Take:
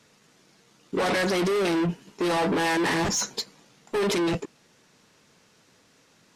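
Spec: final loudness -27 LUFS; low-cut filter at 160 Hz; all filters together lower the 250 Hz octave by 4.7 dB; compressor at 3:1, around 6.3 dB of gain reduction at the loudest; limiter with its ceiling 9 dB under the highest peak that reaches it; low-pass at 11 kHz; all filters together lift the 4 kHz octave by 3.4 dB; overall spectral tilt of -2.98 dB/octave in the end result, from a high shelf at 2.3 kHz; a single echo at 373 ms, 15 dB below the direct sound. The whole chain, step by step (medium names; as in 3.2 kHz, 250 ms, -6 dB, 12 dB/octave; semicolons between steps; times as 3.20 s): high-pass 160 Hz; low-pass 11 kHz; peaking EQ 250 Hz -7 dB; treble shelf 2.3 kHz -4.5 dB; peaking EQ 4 kHz +8.5 dB; compression 3:1, threshold -30 dBFS; peak limiter -28.5 dBFS; delay 373 ms -15 dB; trim +10.5 dB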